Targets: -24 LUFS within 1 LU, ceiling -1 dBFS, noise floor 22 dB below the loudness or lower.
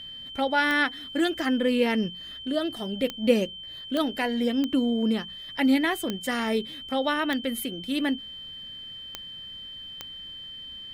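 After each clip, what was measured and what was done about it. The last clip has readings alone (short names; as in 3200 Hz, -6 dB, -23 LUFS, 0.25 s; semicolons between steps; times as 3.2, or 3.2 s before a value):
clicks 8; steady tone 3100 Hz; tone level -38 dBFS; loudness -26.5 LUFS; peak -8.5 dBFS; loudness target -24.0 LUFS
-> de-click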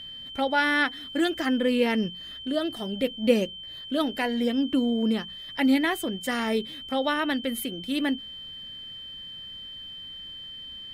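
clicks 0; steady tone 3100 Hz; tone level -38 dBFS
-> notch 3100 Hz, Q 30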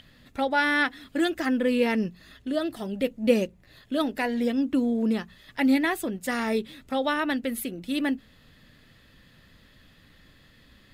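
steady tone none; loudness -26.5 LUFS; peak -8.5 dBFS; loudness target -24.0 LUFS
-> gain +2.5 dB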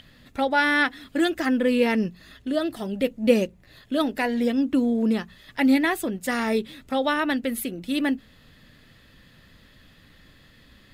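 loudness -24.0 LUFS; peak -6.0 dBFS; noise floor -55 dBFS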